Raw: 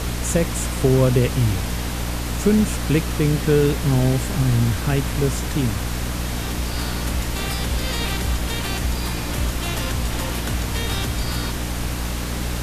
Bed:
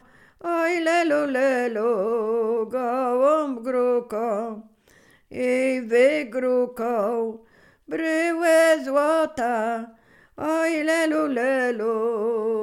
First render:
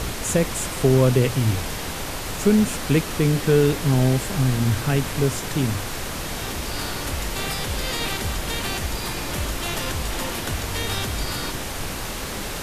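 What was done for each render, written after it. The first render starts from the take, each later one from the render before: de-hum 60 Hz, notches 5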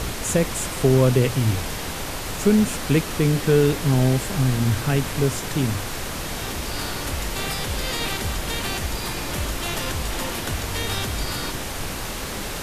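no audible change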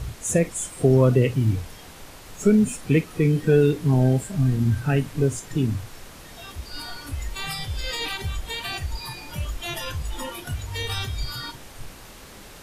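noise print and reduce 14 dB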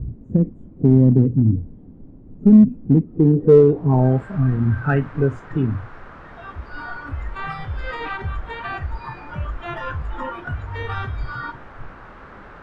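low-pass sweep 250 Hz -> 1.4 kHz, 3.07–4.20 s; in parallel at -11 dB: hard clipper -12 dBFS, distortion -11 dB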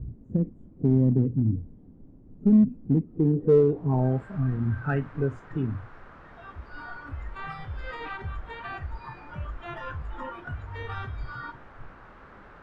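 trim -8 dB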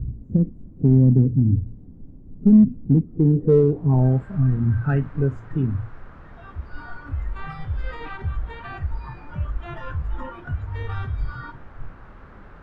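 bass shelf 210 Hz +11 dB; de-hum 56.35 Hz, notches 2

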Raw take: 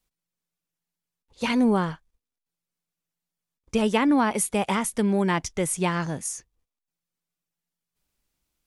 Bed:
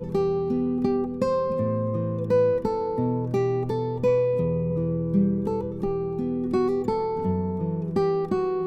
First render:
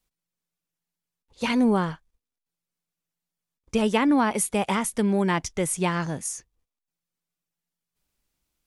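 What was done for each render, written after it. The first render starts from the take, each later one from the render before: no audible change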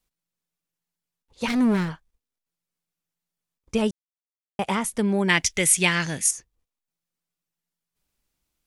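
1.48–1.89 s: comb filter that takes the minimum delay 0.52 ms; 3.91–4.59 s: mute; 5.29–6.31 s: resonant high shelf 1.5 kHz +10 dB, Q 1.5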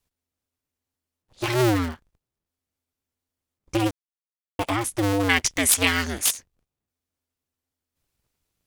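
cycle switcher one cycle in 2, inverted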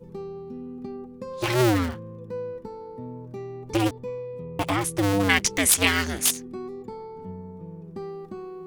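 add bed -12.5 dB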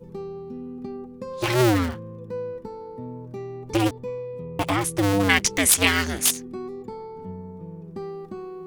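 trim +1.5 dB

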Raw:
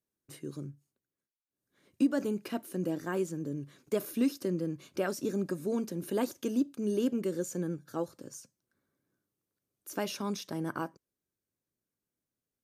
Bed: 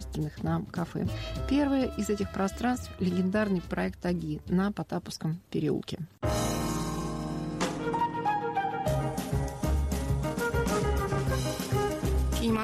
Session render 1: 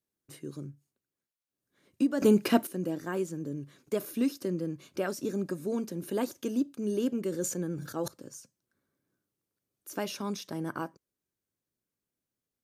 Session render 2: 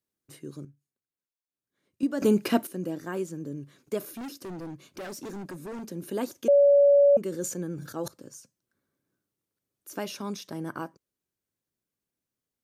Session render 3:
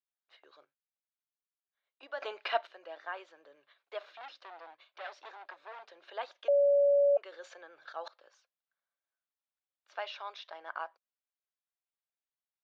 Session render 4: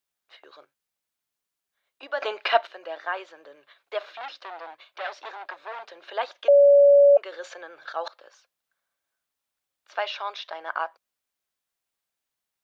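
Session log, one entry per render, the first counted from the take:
2.22–2.67 s: gain +11.5 dB; 7.30–8.08 s: decay stretcher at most 59 dB/s
0.65–2.03 s: gain -8.5 dB; 4.10–5.88 s: hard clipper -35.5 dBFS; 6.48–7.17 s: bleep 568 Hz -14.5 dBFS
gate -48 dBFS, range -8 dB; elliptic band-pass 660–3800 Hz, stop band 50 dB
trim +10.5 dB

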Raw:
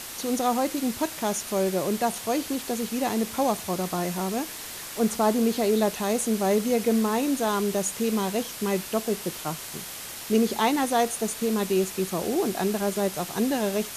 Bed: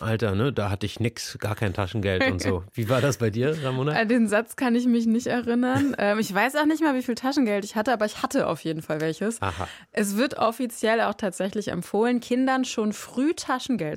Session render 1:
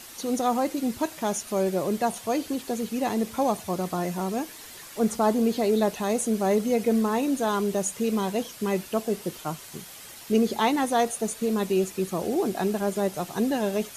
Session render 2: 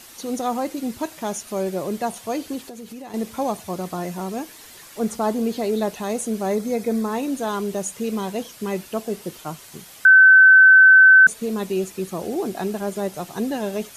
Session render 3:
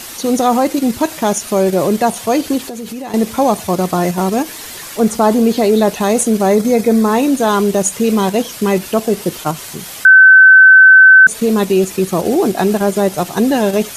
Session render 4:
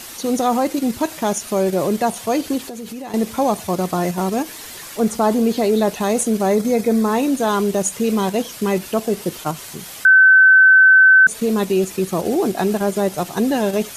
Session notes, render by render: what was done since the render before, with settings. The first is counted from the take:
noise reduction 8 dB, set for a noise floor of -38 dBFS
2.65–3.14 s: compression 5:1, threshold -34 dBFS; 6.51–7.10 s: band-stop 2.9 kHz, Q 5.3; 10.05–11.27 s: bleep 1.53 kHz -6.5 dBFS
in parallel at +1 dB: level held to a coarse grid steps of 15 dB; on the sum: loudness maximiser +8 dB
trim -5 dB

